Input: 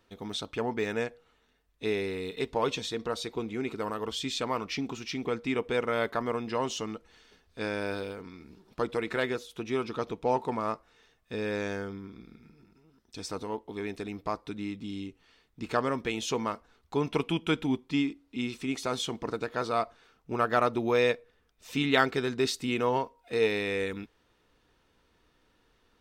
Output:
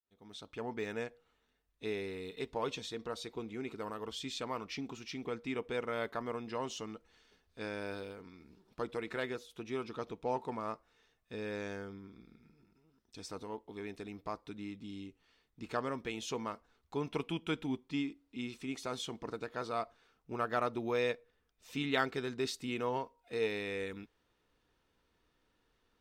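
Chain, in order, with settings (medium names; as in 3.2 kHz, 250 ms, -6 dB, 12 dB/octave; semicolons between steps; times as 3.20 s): fade-in on the opening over 0.74 s; trim -8 dB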